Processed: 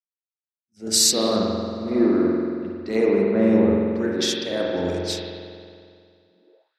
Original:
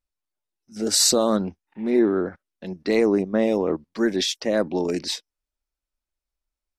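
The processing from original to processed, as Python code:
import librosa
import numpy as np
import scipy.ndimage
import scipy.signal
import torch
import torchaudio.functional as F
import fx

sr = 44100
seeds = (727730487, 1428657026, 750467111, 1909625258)

y = fx.rev_spring(x, sr, rt60_s=3.8, pass_ms=(45,), chirp_ms=45, drr_db=-3.5)
y = fx.filter_sweep_highpass(y, sr, from_hz=81.0, to_hz=1500.0, start_s=6.23, end_s=6.76, q=4.4)
y = fx.band_widen(y, sr, depth_pct=70)
y = F.gain(torch.from_numpy(y), -5.0).numpy()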